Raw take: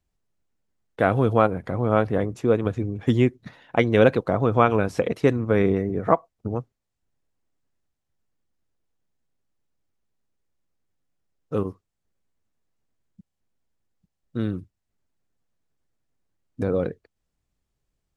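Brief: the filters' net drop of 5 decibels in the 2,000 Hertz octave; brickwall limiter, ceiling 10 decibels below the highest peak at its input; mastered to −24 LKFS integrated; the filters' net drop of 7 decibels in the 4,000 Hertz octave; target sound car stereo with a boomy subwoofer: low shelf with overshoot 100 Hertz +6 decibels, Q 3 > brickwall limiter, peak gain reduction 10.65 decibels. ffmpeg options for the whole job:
ffmpeg -i in.wav -af "equalizer=frequency=2000:width_type=o:gain=-5.5,equalizer=frequency=4000:width_type=o:gain=-7,alimiter=limit=-13.5dB:level=0:latency=1,lowshelf=frequency=100:width_type=q:width=3:gain=6,volume=10dB,alimiter=limit=-14.5dB:level=0:latency=1" out.wav

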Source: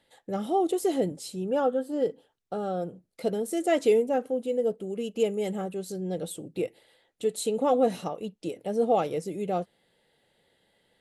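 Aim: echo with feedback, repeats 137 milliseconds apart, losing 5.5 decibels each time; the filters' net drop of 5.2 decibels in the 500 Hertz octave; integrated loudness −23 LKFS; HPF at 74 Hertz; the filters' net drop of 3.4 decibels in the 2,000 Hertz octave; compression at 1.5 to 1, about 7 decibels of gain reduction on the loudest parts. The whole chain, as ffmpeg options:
ffmpeg -i in.wav -af "highpass=74,equalizer=frequency=500:width_type=o:gain=-6,equalizer=frequency=2000:width_type=o:gain=-4,acompressor=threshold=-42dB:ratio=1.5,aecho=1:1:137|274|411|548|685|822|959:0.531|0.281|0.149|0.079|0.0419|0.0222|0.0118,volume=13.5dB" out.wav

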